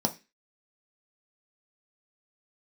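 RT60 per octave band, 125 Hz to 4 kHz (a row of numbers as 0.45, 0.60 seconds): 0.30, 0.30, 0.25, 0.25, 0.35, 0.30 seconds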